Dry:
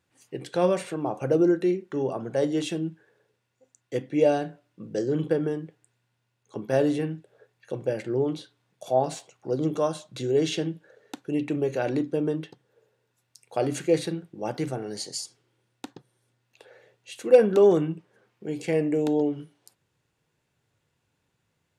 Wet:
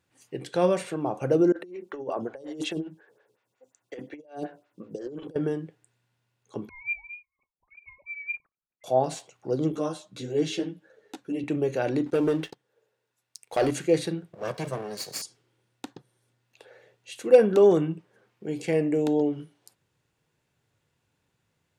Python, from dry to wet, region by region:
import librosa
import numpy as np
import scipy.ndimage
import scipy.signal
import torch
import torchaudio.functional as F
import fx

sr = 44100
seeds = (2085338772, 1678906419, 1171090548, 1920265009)

y = fx.chain(x, sr, fx.low_shelf(hz=230.0, db=-7.0),
    fx.over_compress(threshold_db=-32.0, ratio=-0.5),
    fx.stagger_phaser(hz=5.5), at=(1.52, 5.36))
y = fx.chain(y, sr, fx.sine_speech(),
    fx.curve_eq(hz=(300.0, 470.0, 1800.0, 8200.0), db=(0, -27, -15, 15)),
    fx.freq_invert(carrier_hz=2700), at=(6.69, 8.84))
y = fx.chain(y, sr, fx.peak_eq(hz=300.0, db=4.5, octaves=0.31),
    fx.ensemble(), at=(9.72, 11.44))
y = fx.chain(y, sr, fx.low_shelf(hz=250.0, db=-9.5),
    fx.leveller(passes=2), at=(12.06, 13.71))
y = fx.chain(y, sr, fx.lower_of_two(delay_ms=1.8),
    fx.highpass(hz=120.0, slope=24), at=(14.33, 15.22))